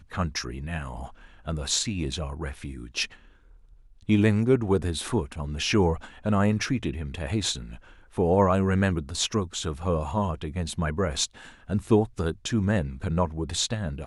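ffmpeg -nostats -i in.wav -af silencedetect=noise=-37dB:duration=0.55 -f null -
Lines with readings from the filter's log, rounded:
silence_start: 3.14
silence_end: 4.09 | silence_duration: 0.95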